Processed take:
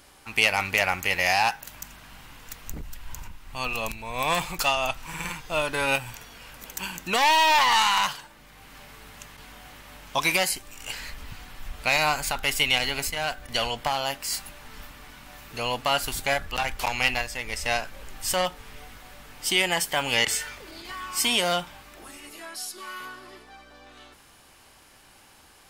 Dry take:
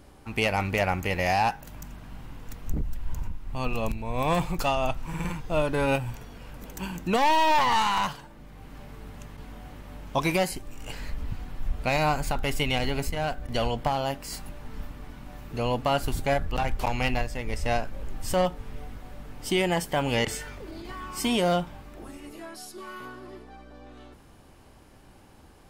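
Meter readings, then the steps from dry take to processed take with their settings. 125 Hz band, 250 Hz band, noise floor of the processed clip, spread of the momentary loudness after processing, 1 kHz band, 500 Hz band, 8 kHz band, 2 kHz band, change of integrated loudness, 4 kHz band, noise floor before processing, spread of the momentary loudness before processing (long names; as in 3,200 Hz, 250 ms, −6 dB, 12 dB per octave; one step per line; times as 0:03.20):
−8.5 dB, −7.0 dB, −54 dBFS, 21 LU, +1.0 dB, −3.0 dB, +9.0 dB, +6.5 dB, +3.0 dB, +8.0 dB, −52 dBFS, 20 LU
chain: tilt shelving filter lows −9 dB, about 800 Hz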